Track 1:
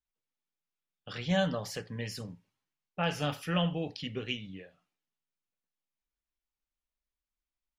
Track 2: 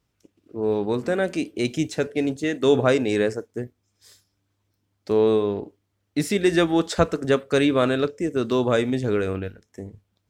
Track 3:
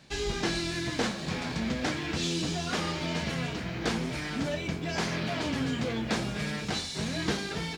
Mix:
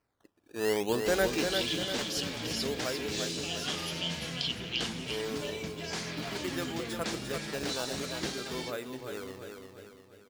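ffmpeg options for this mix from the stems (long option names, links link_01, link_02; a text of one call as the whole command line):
ffmpeg -i stem1.wav -i stem2.wav -i stem3.wav -filter_complex "[0:a]acompressor=threshold=-39dB:ratio=6,highshelf=frequency=2300:width_type=q:width=3:gain=12,adelay=450,volume=-3.5dB,asplit=2[link_01][link_02];[link_02]volume=-6.5dB[link_03];[1:a]lowshelf=frequency=360:gain=-10.5,acrusher=samples=12:mix=1:aa=0.000001:lfo=1:lforange=19.2:lforate=0.55,volume=-1.5dB,afade=type=out:start_time=1.35:duration=0.26:silence=0.237137,asplit=2[link_04][link_05];[link_05]volume=-5.5dB[link_06];[2:a]highshelf=frequency=3000:gain=10,adelay=950,volume=-9dB,asplit=2[link_07][link_08];[link_08]volume=-18dB[link_09];[link_03][link_06][link_09]amix=inputs=3:normalize=0,aecho=0:1:347|694|1041|1388|1735|2082|2429:1|0.47|0.221|0.104|0.0488|0.0229|0.0108[link_10];[link_01][link_04][link_07][link_10]amix=inputs=4:normalize=0" out.wav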